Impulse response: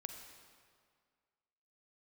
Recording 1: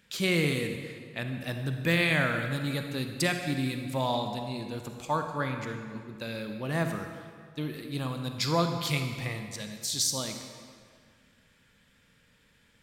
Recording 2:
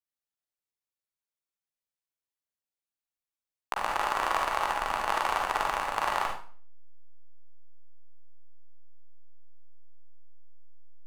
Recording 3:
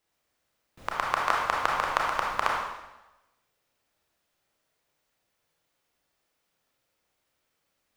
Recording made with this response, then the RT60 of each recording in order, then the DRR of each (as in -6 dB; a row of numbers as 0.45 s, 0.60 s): 1; 2.0 s, 0.45 s, 1.0 s; 5.0 dB, -0.5 dB, -2.5 dB